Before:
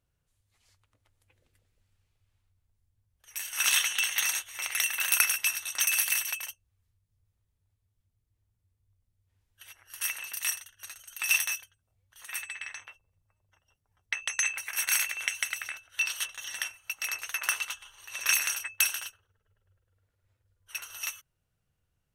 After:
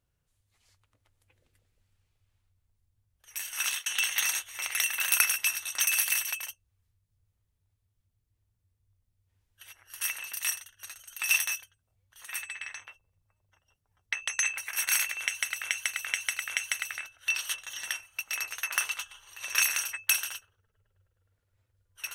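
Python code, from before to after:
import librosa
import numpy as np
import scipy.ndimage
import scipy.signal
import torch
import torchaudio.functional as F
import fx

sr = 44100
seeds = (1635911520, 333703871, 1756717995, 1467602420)

y = fx.edit(x, sr, fx.fade_out_span(start_s=3.38, length_s=0.48, curve='qsin'),
    fx.repeat(start_s=15.2, length_s=0.43, count=4), tone=tone)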